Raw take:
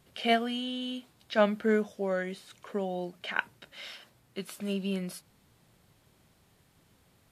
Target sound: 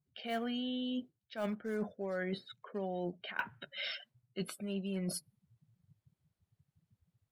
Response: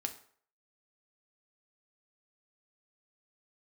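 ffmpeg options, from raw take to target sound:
-af "acrusher=bits=4:mode=log:mix=0:aa=0.000001,acontrast=55,adynamicequalizer=threshold=0.00501:dfrequency=3000:dqfactor=2.3:tfrequency=3000:tqfactor=2.3:attack=5:release=100:ratio=0.375:range=3:mode=cutabove:tftype=bell,afftdn=nr=33:nf=-41,areverse,acompressor=threshold=-36dB:ratio=10,areverse,volume=1.5dB"

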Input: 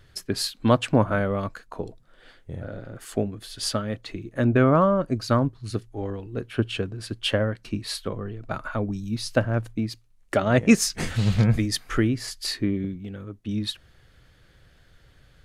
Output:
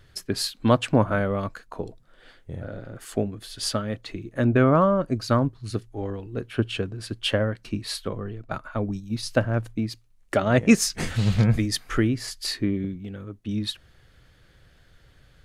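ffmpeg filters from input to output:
-filter_complex "[0:a]asettb=1/sr,asplit=3[a][b][c];[a]atrim=end=8.424[d];[b]atrim=start=8.42:end=9.23,asetpts=PTS-STARTPTS,afade=t=in:d=0.004:c=qsin,afade=t=out:st=0.806:d=0.004:c=qsin,agate=range=-7dB:threshold=-30dB:ratio=16:detection=peak[e];[c]atrim=start=9.226[f];[d][e]acrossfade=d=0.004:c1=hsin:c2=qsin[g];[g][f]acrossfade=d=0.004:c1=qsin:c2=hsin"

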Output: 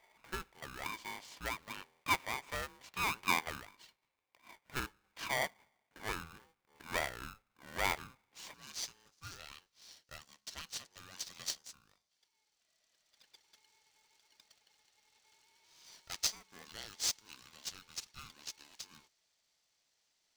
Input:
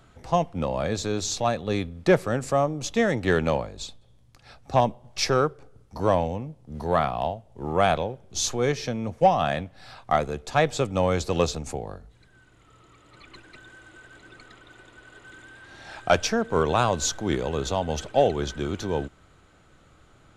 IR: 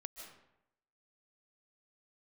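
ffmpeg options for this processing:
-af "asetnsamples=n=441:p=0,asendcmd='8.54 bandpass f 5200',bandpass=f=1.6k:t=q:w=6.3:csg=0,aeval=exprs='val(0)*sgn(sin(2*PI*650*n/s))':c=same,volume=1dB"

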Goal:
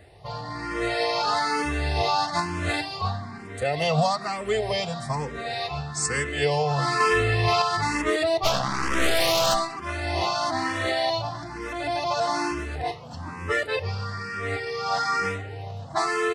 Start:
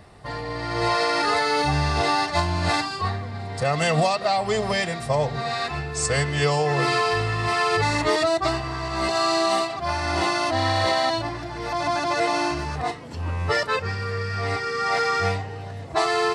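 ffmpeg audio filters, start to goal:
-filter_complex "[0:a]asettb=1/sr,asplit=3[a][b][c];[a]atrim=end=7.004[d];[b]atrim=start=7:end=7.62,asetpts=PTS-STARTPTS,afade=t=in:d=0.004:c=qsin,afade=t=out:st=0.616:d=0.004:c=qsin,acontrast=25[e];[c]atrim=start=7.616[f];[d][e]acrossfade=d=0.004:c1=hsin:c2=qsin[g];[g][f]acrossfade=d=0.004:c1=qsin:c2=hsin,asplit=2[h][i];[i]adelay=260,highpass=300,lowpass=3.4k,asoftclip=type=hard:threshold=-15.5dB,volume=-21dB[j];[h][j]amix=inputs=2:normalize=0,asplit=3[k][l][m];[k]afade=t=out:st=8.43:d=0.02[n];[l]aeval=exprs='0.316*(cos(1*acos(clip(val(0)/0.316,-1,1)))-cos(1*PI/2))+0.112*(cos(8*acos(clip(val(0)/0.316,-1,1)))-cos(8*PI/2))':c=same,afade=t=in:st=8.43:d=0.02,afade=t=out:st=9.53:d=0.02[o];[m]afade=t=in:st=9.53:d=0.02[p];[n][o][p]amix=inputs=3:normalize=0,asplit=2[q][r];[r]afreqshift=1.1[s];[q][s]amix=inputs=2:normalize=1"

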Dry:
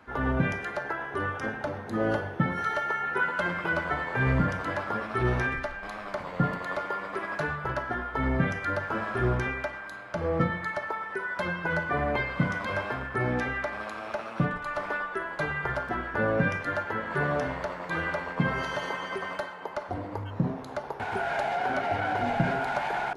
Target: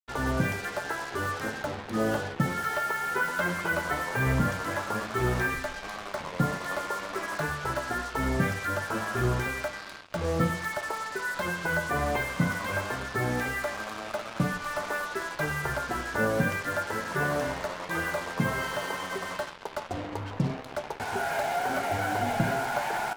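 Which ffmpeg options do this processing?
-af "acrusher=bits=5:mix=0:aa=0.5,flanger=delay=8.4:depth=6:regen=70:speed=0.22:shape=triangular,volume=4dB"

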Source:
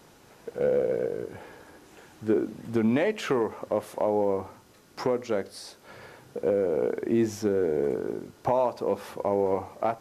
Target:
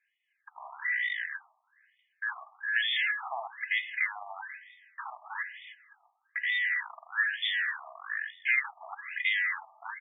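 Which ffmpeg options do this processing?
-af "afftfilt=real='real(if(lt(b,272),68*(eq(floor(b/68),0)*3+eq(floor(b/68),1)*0+eq(floor(b/68),2)*1+eq(floor(b/68),3)*2)+mod(b,68),b),0)':imag='imag(if(lt(b,272),68*(eq(floor(b/68),0)*3+eq(floor(b/68),1)*0+eq(floor(b/68),2)*1+eq(floor(b/68),3)*2)+mod(b,68),b),0)':win_size=2048:overlap=0.75,agate=range=-27dB:threshold=-45dB:ratio=16:detection=peak,equalizer=f=120:t=o:w=0.95:g=-7,aecho=1:1:2.4:0.84,acontrast=37,aeval=exprs='0.531*(cos(1*acos(clip(val(0)/0.531,-1,1)))-cos(1*PI/2))+0.00944*(cos(4*acos(clip(val(0)/0.531,-1,1)))-cos(4*PI/2))+0.00422*(cos(5*acos(clip(val(0)/0.531,-1,1)))-cos(5*PI/2))+0.211*(cos(6*acos(clip(val(0)/0.531,-1,1)))-cos(6*PI/2))+0.0266*(cos(7*acos(clip(val(0)/0.531,-1,1)))-cos(7*PI/2))':c=same,aresample=16000,asoftclip=type=tanh:threshold=-15dB,aresample=44100,aecho=1:1:161|322|483|644:0.0944|0.051|0.0275|0.0149,afftfilt=real='re*between(b*sr/1024,860*pow(2600/860,0.5+0.5*sin(2*PI*1.1*pts/sr))/1.41,860*pow(2600/860,0.5+0.5*sin(2*PI*1.1*pts/sr))*1.41)':imag='im*between(b*sr/1024,860*pow(2600/860,0.5+0.5*sin(2*PI*1.1*pts/sr))/1.41,860*pow(2600/860,0.5+0.5*sin(2*PI*1.1*pts/sr))*1.41)':win_size=1024:overlap=0.75"

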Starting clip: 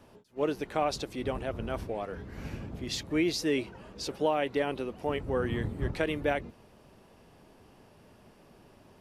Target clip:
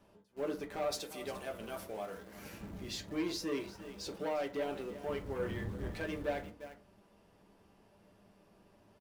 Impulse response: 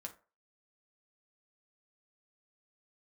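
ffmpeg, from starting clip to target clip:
-filter_complex "[0:a]asettb=1/sr,asplit=3[a][b][c];[a]atrim=end=0.924[d];[b]atrim=start=0.92:end=2.61,asetpts=PTS-STARTPTS,afade=t=in:d=0.004:c=qsin,afade=t=out:st=1.686:d=0.004:c=qsin,aemphasis=mode=production:type=bsi[e];[c]atrim=start=2.606[f];[d][e]acrossfade=d=0.004:c1=hsin:c2=qsin[g];[g][f]acrossfade=d=0.004:c1=qsin:c2=hsin,aecho=1:1:350:0.141,asplit=2[h][i];[i]acrusher=bits=6:mix=0:aa=0.000001,volume=-8dB[j];[h][j]amix=inputs=2:normalize=0,asoftclip=type=tanh:threshold=-23dB[k];[1:a]atrim=start_sample=2205[l];[k][l]afir=irnorm=-1:irlink=0,volume=-4dB"

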